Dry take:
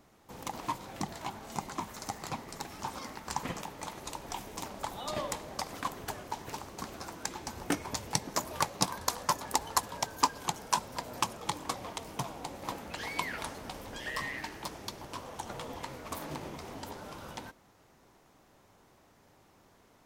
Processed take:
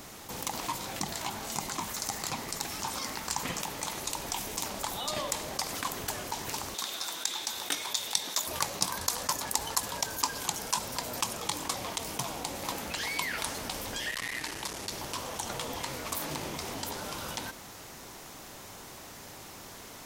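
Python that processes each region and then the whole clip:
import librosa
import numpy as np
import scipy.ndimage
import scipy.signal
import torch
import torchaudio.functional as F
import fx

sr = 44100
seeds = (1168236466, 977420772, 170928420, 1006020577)

y = fx.chain(x, sr, fx.highpass(hz=790.0, slope=6),
    fx.peak_eq(hz=3600.0, db=14.0, octaves=0.23), at=(6.74, 8.47))
y = fx.chain(y, sr, fx.cvsd(bps=64000),
    fx.transformer_sat(knee_hz=2700.0), at=(14.11, 14.92))
y = fx.high_shelf(y, sr, hz=2400.0, db=11.5)
y = fx.env_flatten(y, sr, amount_pct=50)
y = y * 10.0 ** (-8.5 / 20.0)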